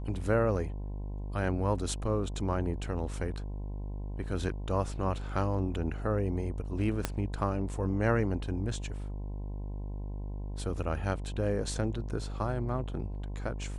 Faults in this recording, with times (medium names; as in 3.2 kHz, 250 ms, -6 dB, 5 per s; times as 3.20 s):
buzz 50 Hz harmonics 21 -37 dBFS
7.05 s: pop -13 dBFS